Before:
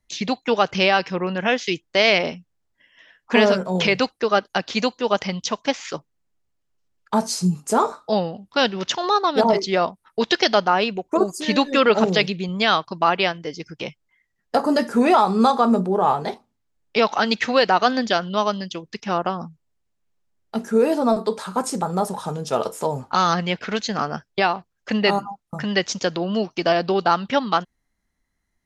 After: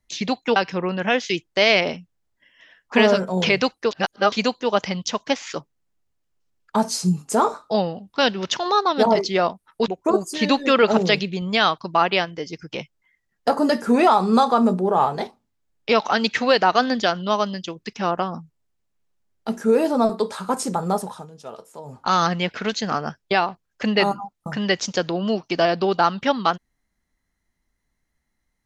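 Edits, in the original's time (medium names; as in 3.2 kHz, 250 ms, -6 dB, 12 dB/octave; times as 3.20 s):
0.56–0.94 s: delete
4.29–4.70 s: reverse
10.26–10.95 s: delete
22.03–23.21 s: dip -15 dB, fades 0.31 s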